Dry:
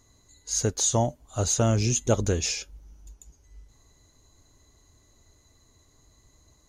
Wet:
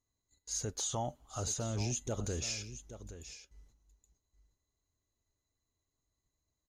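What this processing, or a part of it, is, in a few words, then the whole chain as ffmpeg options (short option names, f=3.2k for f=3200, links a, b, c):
clipper into limiter: -filter_complex "[0:a]agate=range=-18dB:threshold=-53dB:ratio=16:detection=peak,asettb=1/sr,asplit=3[a][b][c];[a]atrim=end=0.804[d];[b]atrim=start=0.8:end=1.4,asetpts=PTS-STARTPTS,afade=t=in:d=0.004:c=qsin,afade=t=out:st=0.596:d=0.004:c=qsin,equalizer=f=800:t=o:w=0.33:g=8,equalizer=f=1.25k:t=o:w=0.33:g=10,equalizer=f=3.15k:t=o:w=0.33:g=9[e];[c]atrim=start=1.396[f];[d][e]acrossfade=d=0.004:c1=hsin:c2=qsin[g];[g][f]acrossfade=d=0.004:c1=qsin:c2=hsin,asoftclip=type=hard:threshold=-11dB,alimiter=limit=-19dB:level=0:latency=1:release=50,aecho=1:1:823:0.237,volume=-8dB"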